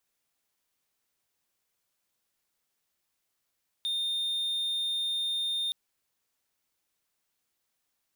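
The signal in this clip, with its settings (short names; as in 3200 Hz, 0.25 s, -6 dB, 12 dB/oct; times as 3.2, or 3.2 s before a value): tone triangle 3640 Hz -26 dBFS 1.87 s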